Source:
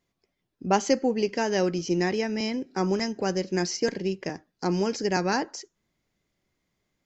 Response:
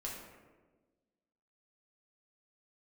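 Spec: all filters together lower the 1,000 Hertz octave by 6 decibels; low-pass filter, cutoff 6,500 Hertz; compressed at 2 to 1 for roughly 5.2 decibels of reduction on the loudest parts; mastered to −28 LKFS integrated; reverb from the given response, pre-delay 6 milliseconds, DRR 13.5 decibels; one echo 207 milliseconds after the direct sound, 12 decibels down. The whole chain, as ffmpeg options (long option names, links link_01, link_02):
-filter_complex "[0:a]lowpass=6500,equalizer=frequency=1000:width_type=o:gain=-8.5,acompressor=threshold=-29dB:ratio=2,aecho=1:1:207:0.251,asplit=2[link_01][link_02];[1:a]atrim=start_sample=2205,adelay=6[link_03];[link_02][link_03]afir=irnorm=-1:irlink=0,volume=-13.5dB[link_04];[link_01][link_04]amix=inputs=2:normalize=0,volume=3.5dB"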